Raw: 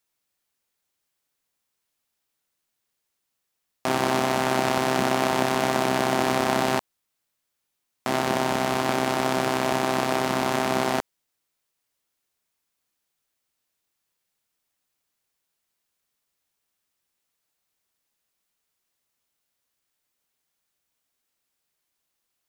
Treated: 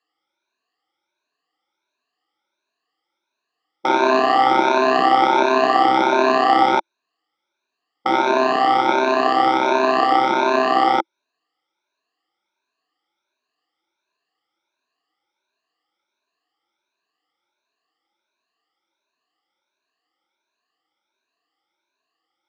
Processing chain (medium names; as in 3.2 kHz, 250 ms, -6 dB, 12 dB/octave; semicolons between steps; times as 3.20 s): drifting ripple filter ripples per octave 1.5, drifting +1.4 Hz, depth 23 dB; cabinet simulation 310–4800 Hz, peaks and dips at 330 Hz +10 dB, 810 Hz +7 dB, 1.2 kHz +6 dB; trim -1 dB